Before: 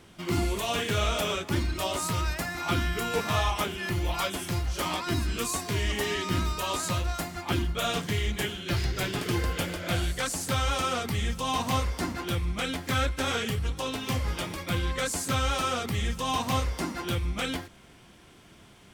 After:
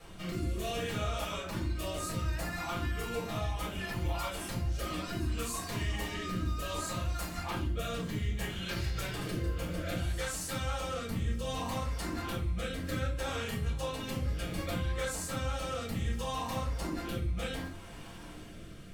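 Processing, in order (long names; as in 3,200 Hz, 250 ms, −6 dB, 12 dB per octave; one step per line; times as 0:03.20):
high-shelf EQ 8,800 Hz +5.5 dB
rotating-speaker cabinet horn 0.65 Hz
parametric band 1,100 Hz +3 dB 1.9 octaves
downward compressor, threshold −39 dBFS, peak gain reduction 16.5 dB
rectangular room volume 190 cubic metres, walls furnished, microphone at 6 metres
level −6.5 dB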